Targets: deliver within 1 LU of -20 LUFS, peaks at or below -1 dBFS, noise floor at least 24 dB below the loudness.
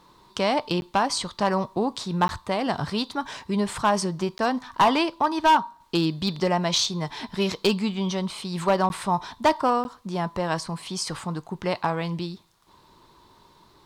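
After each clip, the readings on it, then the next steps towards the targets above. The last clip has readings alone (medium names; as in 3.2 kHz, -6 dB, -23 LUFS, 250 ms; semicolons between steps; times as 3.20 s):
clipped samples 0.5%; clipping level -13.0 dBFS; dropouts 5; longest dropout 11 ms; loudness -25.5 LUFS; peak level -13.0 dBFS; loudness target -20.0 LUFS
-> clip repair -13 dBFS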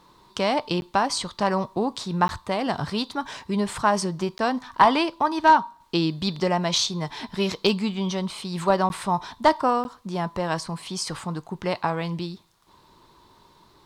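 clipped samples 0.0%; dropouts 5; longest dropout 11 ms
-> interpolate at 0.81/2.28/4.38/8.89/9.84 s, 11 ms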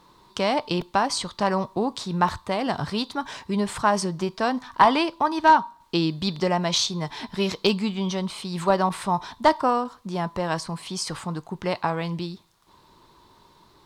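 dropouts 0; loudness -24.5 LUFS; peak level -4.0 dBFS; loudness target -20.0 LUFS
-> trim +4.5 dB; peak limiter -1 dBFS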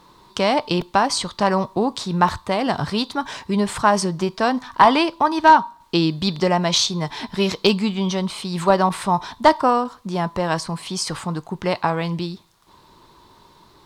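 loudness -20.0 LUFS; peak level -1.0 dBFS; noise floor -52 dBFS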